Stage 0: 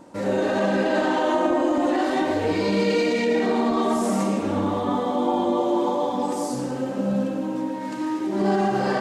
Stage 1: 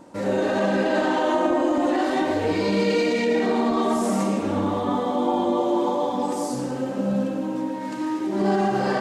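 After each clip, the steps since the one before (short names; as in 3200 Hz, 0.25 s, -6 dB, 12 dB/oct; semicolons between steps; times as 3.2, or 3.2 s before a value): nothing audible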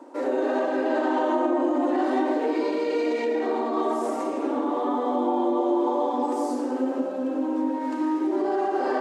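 tilt shelf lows +5 dB, about 1500 Hz; compressor, threshold -18 dBFS, peak gain reduction 5.5 dB; rippled Chebyshev high-pass 250 Hz, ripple 3 dB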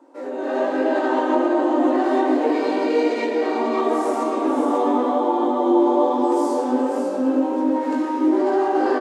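AGC gain up to 11.5 dB; chorus 0.93 Hz, delay 18 ms, depth 2.7 ms; on a send: echo 0.546 s -6 dB; on the sum: gain -3 dB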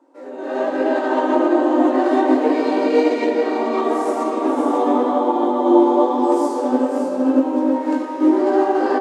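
on a send at -7.5 dB: running mean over 13 samples + reverb RT60 3.7 s, pre-delay 20 ms; on the sum: upward expander 1.5:1, over -31 dBFS; gain +4 dB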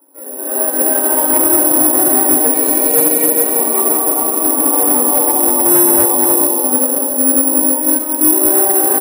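echo 0.178 s -7.5 dB; careless resampling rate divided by 4×, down filtered, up zero stuff; short-mantissa float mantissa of 4-bit; gain -1 dB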